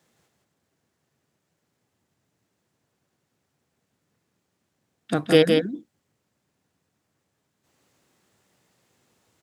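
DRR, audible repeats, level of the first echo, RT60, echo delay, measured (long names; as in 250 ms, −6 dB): no reverb audible, 1, −4.5 dB, no reverb audible, 166 ms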